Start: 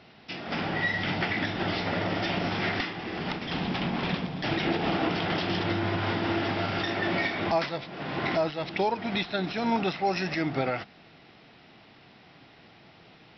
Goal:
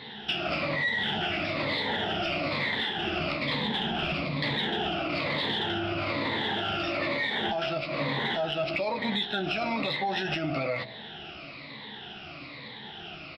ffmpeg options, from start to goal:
-filter_complex "[0:a]afftfilt=real='re*pow(10,15/40*sin(2*PI*(1*log(max(b,1)*sr/1024/100)/log(2)-(-1.1)*(pts-256)/sr)))':imag='im*pow(10,15/40*sin(2*PI*(1*log(max(b,1)*sr/1024/100)/log(2)-(-1.1)*(pts-256)/sr)))':win_size=1024:overlap=0.75,bandreject=f=59.42:t=h:w=4,bandreject=f=118.84:t=h:w=4,bandreject=f=178.26:t=h:w=4,bandreject=f=237.68:t=h:w=4,bandreject=f=297.1:t=h:w=4,bandreject=f=356.52:t=h:w=4,bandreject=f=415.94:t=h:w=4,bandreject=f=475.36:t=h:w=4,bandreject=f=534.78:t=h:w=4,bandreject=f=594.2:t=h:w=4,bandreject=f=653.62:t=h:w=4,bandreject=f=713.04:t=h:w=4,bandreject=f=772.46:t=h:w=4,bandreject=f=831.88:t=h:w=4,adynamicequalizer=threshold=0.00631:dfrequency=610:dqfactor=5:tfrequency=610:tqfactor=5:attack=5:release=100:ratio=0.375:range=3:mode=boostabove:tftype=bell,alimiter=limit=-21dB:level=0:latency=1:release=14,lowpass=f=3.6k:t=q:w=2.3,acompressor=threshold=-34dB:ratio=6,aeval=exprs='0.0841*(cos(1*acos(clip(val(0)/0.0841,-1,1)))-cos(1*PI/2))+0.000944*(cos(7*acos(clip(val(0)/0.0841,-1,1)))-cos(7*PI/2))':c=same,asplit=2[a][b];[b]adelay=14,volume=-7dB[c];[a][c]amix=inputs=2:normalize=0,volume=6.5dB"

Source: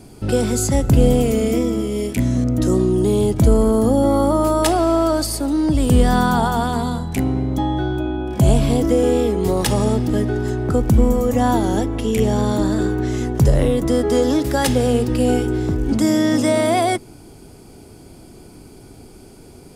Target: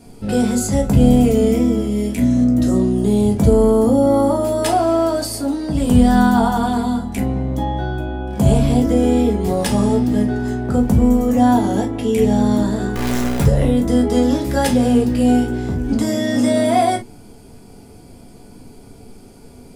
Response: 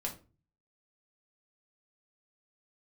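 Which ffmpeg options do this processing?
-filter_complex "[0:a]asplit=3[a][b][c];[a]afade=t=out:st=12.94:d=0.02[d];[b]acrusher=bits=4:dc=4:mix=0:aa=0.000001,afade=t=in:st=12.94:d=0.02,afade=t=out:st=13.43:d=0.02[e];[c]afade=t=in:st=13.43:d=0.02[f];[d][e][f]amix=inputs=3:normalize=0[g];[1:a]atrim=start_sample=2205,atrim=end_sample=3087[h];[g][h]afir=irnorm=-1:irlink=0,volume=-1.5dB"

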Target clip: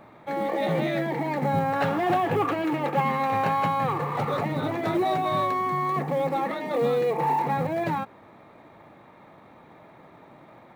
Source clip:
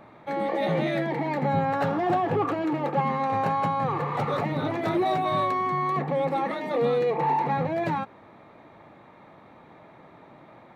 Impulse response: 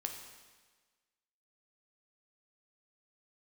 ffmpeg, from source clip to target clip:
-filter_complex "[0:a]asettb=1/sr,asplit=3[a][b][c];[a]atrim=end=1.764[d];[b]atrim=start=1.76:end=3.93,asetpts=PTS-STARTPTS,afade=t=in:d=0.004:c=qsin,afade=t=out:st=2.166:d=0.004:c=qsin,equalizer=f=2.6k:t=o:w=1.6:g=6[e];[c]atrim=start=3.926[f];[d][e]acrossfade=d=0.004:c1=hsin:c2=qsin[g];[g][f]acrossfade=d=0.004:c1=qsin:c2=hsin,acrusher=bits=8:mode=log:mix=0:aa=0.000001"

